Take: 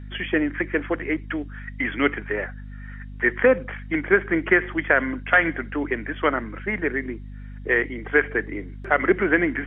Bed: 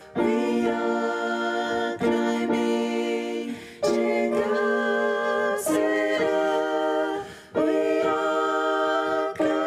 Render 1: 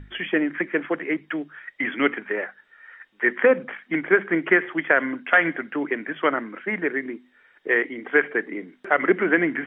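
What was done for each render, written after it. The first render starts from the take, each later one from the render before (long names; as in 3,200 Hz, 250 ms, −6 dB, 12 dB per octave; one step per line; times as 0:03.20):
mains-hum notches 50/100/150/200/250 Hz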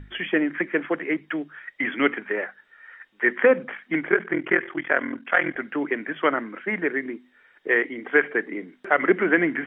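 0:04.10–0:05.56: ring modulation 21 Hz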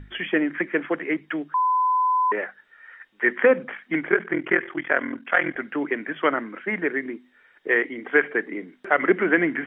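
0:01.54–0:02.32: beep over 1,010 Hz −17.5 dBFS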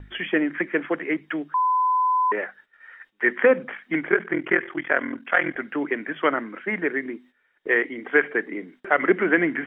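noise gate −50 dBFS, range −11 dB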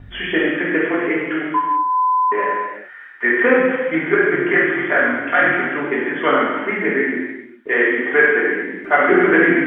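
reverb whose tail is shaped and stops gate 470 ms falling, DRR −6.5 dB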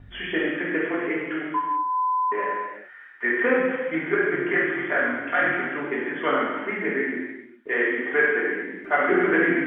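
level −7 dB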